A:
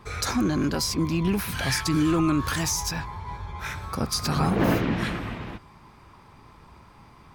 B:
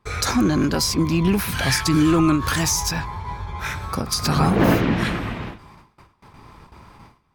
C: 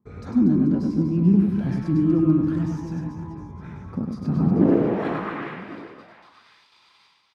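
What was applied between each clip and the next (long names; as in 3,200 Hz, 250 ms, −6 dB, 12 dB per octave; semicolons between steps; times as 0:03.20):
noise gate with hold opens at −40 dBFS; every ending faded ahead of time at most 130 dB per second; level +5.5 dB
band-pass filter sweep 210 Hz → 3,800 Hz, 0:04.48–0:05.79; on a send: reverse bouncing-ball delay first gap 100 ms, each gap 1.4×, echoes 5; on the sum: level +3 dB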